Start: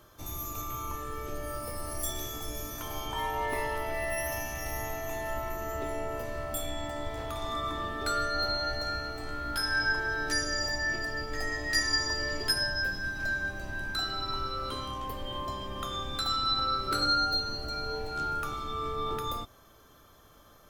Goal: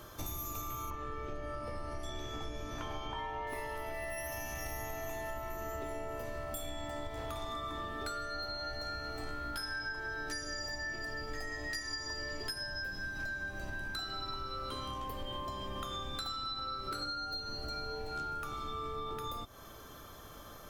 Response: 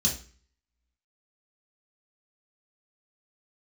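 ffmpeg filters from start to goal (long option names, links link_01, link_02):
-filter_complex "[0:a]asettb=1/sr,asplit=3[link_01][link_02][link_03];[link_01]atrim=end=0.904[link_04];[link_02]atrim=start=0.9:end=3.47,asetpts=PTS-STARTPTS,afade=type=in:duration=0.004:curve=qsin,afade=type=out:start_time=2.566:duration=0.004:curve=qsin,lowpass=3500[link_05];[link_03]atrim=start=3.466[link_06];[link_04][link_05]acrossfade=duration=0.004:curve1=hsin:curve2=qsin[link_07];[link_07][link_06]acrossfade=duration=0.004:curve1=qsin:curve2=hsin,acompressor=threshold=-43dB:ratio=12,volume=6.5dB"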